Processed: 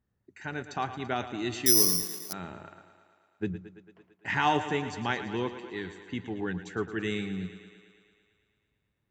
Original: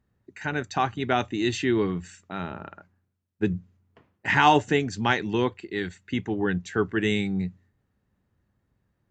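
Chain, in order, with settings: on a send: thinning echo 0.112 s, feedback 73%, high-pass 170 Hz, level -12 dB; 1.66–2.33 on the sum: careless resampling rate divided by 8×, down filtered, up zero stuff; gain -7.5 dB

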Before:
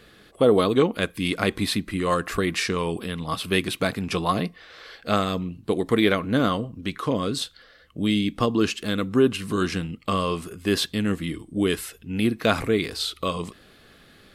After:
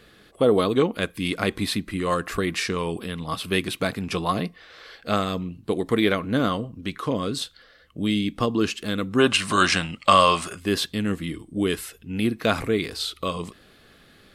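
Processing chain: spectral gain 9.19–10.59, 530–10000 Hz +12 dB; gain -1 dB

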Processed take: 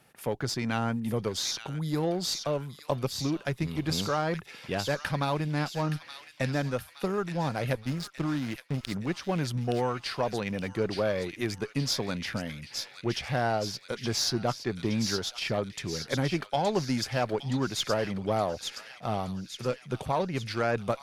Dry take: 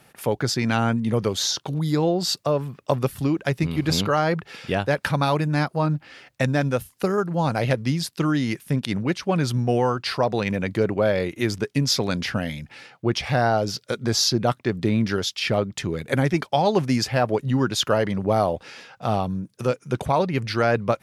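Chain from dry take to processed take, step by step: 7.74–8.92 backlash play -25 dBFS; thin delay 0.87 s, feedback 55%, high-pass 2300 Hz, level -5 dB; added harmonics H 8 -29 dB, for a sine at -6 dBFS; gain -7.5 dB

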